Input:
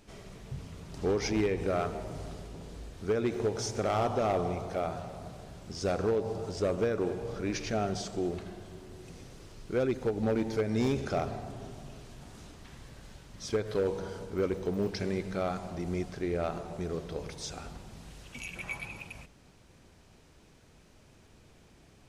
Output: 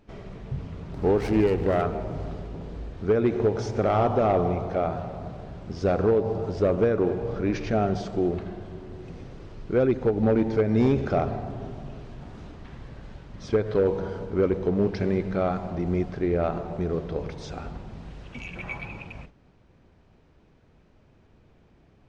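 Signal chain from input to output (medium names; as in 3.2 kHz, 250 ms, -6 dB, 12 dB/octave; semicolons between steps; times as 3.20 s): gate -52 dBFS, range -7 dB; tape spacing loss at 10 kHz 27 dB; 0.94–1.82 s: sliding maximum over 9 samples; trim +8.5 dB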